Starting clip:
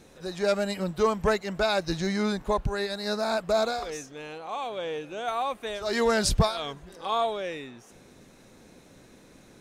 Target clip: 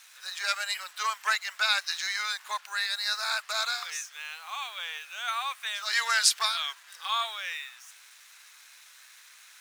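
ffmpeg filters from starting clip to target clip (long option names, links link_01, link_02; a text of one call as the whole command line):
ffmpeg -i in.wav -af "acrusher=bits=8:mix=0:aa=0.5,highpass=frequency=1300:width=0.5412,highpass=frequency=1300:width=1.3066,acontrast=49" out.wav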